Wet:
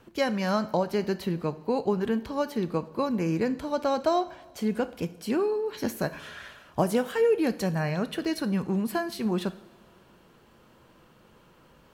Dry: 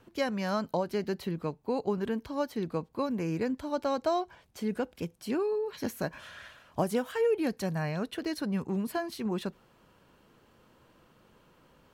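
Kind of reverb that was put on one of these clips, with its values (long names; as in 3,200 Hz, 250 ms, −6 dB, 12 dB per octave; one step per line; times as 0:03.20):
coupled-rooms reverb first 0.56 s, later 3 s, from −18 dB, DRR 11.5 dB
level +4 dB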